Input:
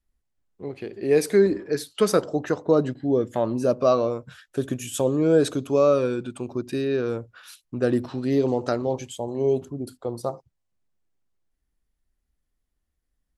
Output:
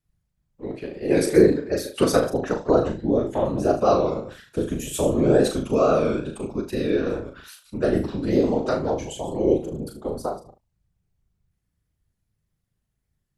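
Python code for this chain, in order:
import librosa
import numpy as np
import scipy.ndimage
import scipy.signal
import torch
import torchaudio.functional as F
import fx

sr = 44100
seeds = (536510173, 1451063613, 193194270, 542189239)

y = fx.reverse_delay(x, sr, ms=100, wet_db=-11.0)
y = fx.whisperise(y, sr, seeds[0])
y = fx.wow_flutter(y, sr, seeds[1], rate_hz=2.1, depth_cents=69.0)
y = fx.room_early_taps(y, sr, ms=(38, 76), db=(-6.0, -14.5))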